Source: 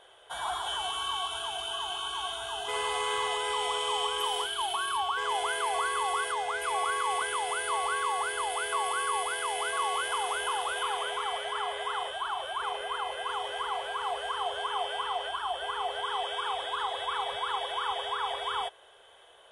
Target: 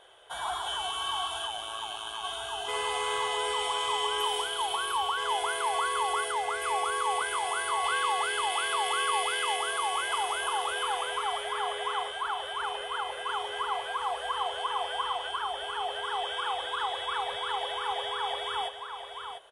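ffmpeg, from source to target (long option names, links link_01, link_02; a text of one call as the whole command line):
ffmpeg -i in.wav -filter_complex "[0:a]asplit=3[link_01][link_02][link_03];[link_01]afade=type=out:start_time=1.46:duration=0.02[link_04];[link_02]tremolo=f=110:d=0.824,afade=type=in:start_time=1.46:duration=0.02,afade=type=out:start_time=2.23:duration=0.02[link_05];[link_03]afade=type=in:start_time=2.23:duration=0.02[link_06];[link_04][link_05][link_06]amix=inputs=3:normalize=0,asettb=1/sr,asplit=3[link_07][link_08][link_09];[link_07]atrim=end=7.844[link_10];[link_08]atrim=start=7.84:end=9.56,asetpts=PTS-STARTPTS,afade=type=in:duration=0.004:curve=qsin,afade=type=out:start_time=1.716:duration=0.004:curve=qsin,equalizer=frequency=3000:width_type=o:width=1.5:gain=5.5[link_11];[link_09]atrim=start=9.556[link_12];[link_10][link_11]acrossfade=duration=0.004:curve1=hsin:curve2=qsin[link_13];[link_13][link_12]acrossfade=duration=0.004:curve1=qsin:curve2=hsin,aecho=1:1:696:0.398" out.wav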